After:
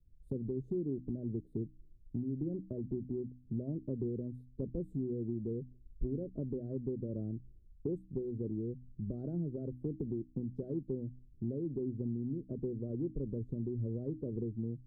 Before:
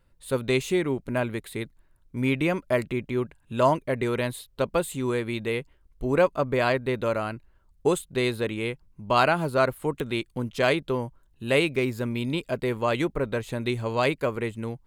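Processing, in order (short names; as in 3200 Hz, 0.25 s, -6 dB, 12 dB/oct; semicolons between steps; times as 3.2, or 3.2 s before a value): limiter -18.5 dBFS, peak gain reduction 10.5 dB; inverse Chebyshev low-pass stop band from 950 Hz, stop band 50 dB; compressor 5:1, threshold -40 dBFS, peak gain reduction 14 dB; de-hum 62.66 Hz, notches 5; three-band expander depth 40%; gain +5.5 dB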